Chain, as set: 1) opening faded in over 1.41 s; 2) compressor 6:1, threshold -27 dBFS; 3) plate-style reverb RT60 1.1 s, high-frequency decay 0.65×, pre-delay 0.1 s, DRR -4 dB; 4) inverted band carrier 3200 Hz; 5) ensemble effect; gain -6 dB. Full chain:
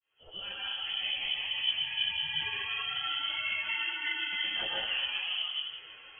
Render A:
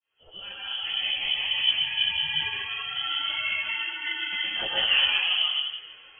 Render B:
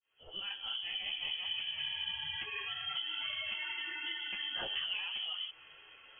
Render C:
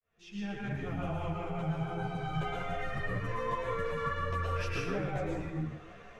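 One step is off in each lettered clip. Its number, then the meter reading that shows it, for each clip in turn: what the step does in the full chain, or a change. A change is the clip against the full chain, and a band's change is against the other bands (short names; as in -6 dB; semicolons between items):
2, mean gain reduction 4.5 dB; 3, crest factor change -2.0 dB; 4, 2 kHz band -25.5 dB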